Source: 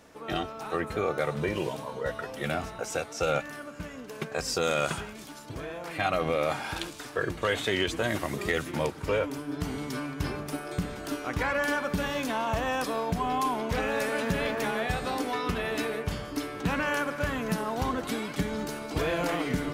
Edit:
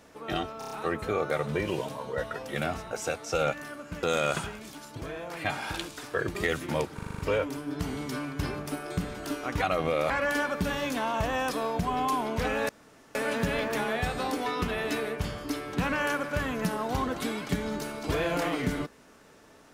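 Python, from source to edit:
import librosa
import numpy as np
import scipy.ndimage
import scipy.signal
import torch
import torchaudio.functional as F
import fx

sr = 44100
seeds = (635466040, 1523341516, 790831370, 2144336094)

y = fx.edit(x, sr, fx.stutter(start_s=0.59, slice_s=0.03, count=5),
    fx.cut(start_s=3.91, length_s=0.66),
    fx.move(start_s=6.04, length_s=0.48, to_s=11.43),
    fx.cut(start_s=7.37, length_s=1.03),
    fx.stutter(start_s=9.0, slice_s=0.04, count=7),
    fx.insert_room_tone(at_s=14.02, length_s=0.46), tone=tone)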